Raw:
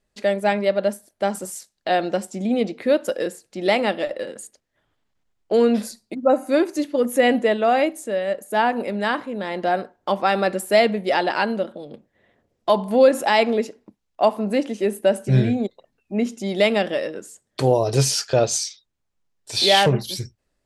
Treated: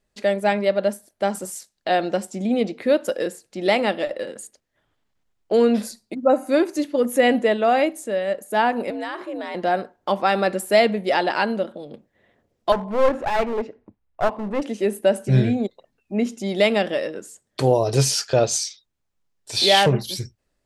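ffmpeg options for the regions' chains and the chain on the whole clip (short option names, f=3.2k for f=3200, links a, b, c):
-filter_complex "[0:a]asettb=1/sr,asplit=3[a][b][c];[a]atrim=end=8.904[d];[b]atrim=start=8.9:end=9.55,asetpts=PTS-STARTPTS,afade=t=in:d=0.004:c=qsin,afade=t=out:st=0.646:d=0.004:c=qsin,bandreject=f=50:t=h:w=6,bandreject=f=100:t=h:w=6,bandreject=f=150:t=h:w=6,bandreject=f=200:t=h:w=6,bandreject=f=250:t=h:w=6,bandreject=f=300:t=h:w=6,bandreject=f=350:t=h:w=6,acompressor=threshold=-25dB:ratio=4:attack=3.2:release=140:knee=1:detection=peak,afreqshift=67[e];[c]atrim=start=9.546[f];[d][e]acrossfade=d=0.004:c1=hsin:c2=qsin[g];[g][f]acrossfade=d=0.004:c1=qsin:c2=hsin,asettb=1/sr,asplit=3[h][i][j];[h]atrim=end=12.724[k];[i]atrim=start=12.72:end=14.62,asetpts=PTS-STARTPTS,afade=t=in:d=0.004:c=qsin,afade=t=out:st=1.896:d=0.004:c=qsin,lowpass=2k,lowshelf=f=130:t=q:w=1.5:g=6.5,aeval=exprs='clip(val(0),-1,0.0531)':c=same[l];[j]atrim=start=14.616[m];[k][l]acrossfade=d=0.004:c1=hsin:c2=qsin[n];[n][m]acrossfade=d=0.004:c1=qsin:c2=hsin"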